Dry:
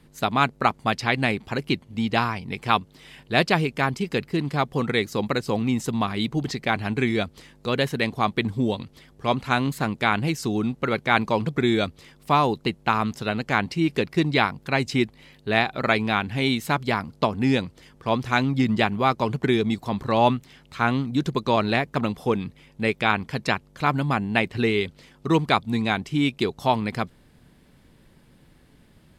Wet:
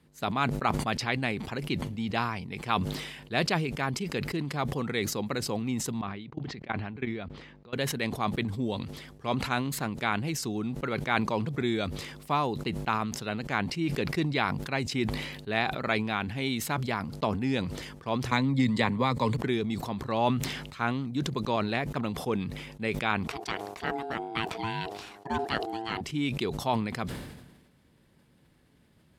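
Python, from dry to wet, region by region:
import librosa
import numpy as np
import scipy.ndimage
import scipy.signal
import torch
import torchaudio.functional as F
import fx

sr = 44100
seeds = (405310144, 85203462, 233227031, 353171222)

y = fx.chain(x, sr, fx.lowpass(hz=3000.0, slope=12),
    fx.level_steps(step_db=21), at=(6.01, 7.73))
y = fx.chain(y, sr, fx.ripple_eq(per_octave=1.0, db=9),
    fx.band_squash(depth_pct=100), at=(18.31, 19.37))
y = fx.chain(y, sr, fx.highpass(hz=110.0, slope=6),
    fx.ring_mod(carrier_hz=560.0), at=(23.27, 26.01))
y = scipy.signal.sosfilt(scipy.signal.butter(2, 53.0, 'highpass', fs=sr, output='sos'), y)
y = fx.sustainer(y, sr, db_per_s=48.0)
y = F.gain(torch.from_numpy(y), -8.0).numpy()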